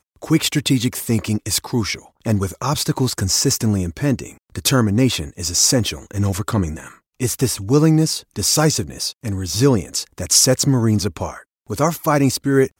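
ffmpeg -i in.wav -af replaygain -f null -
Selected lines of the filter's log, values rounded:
track_gain = -0.6 dB
track_peak = 0.617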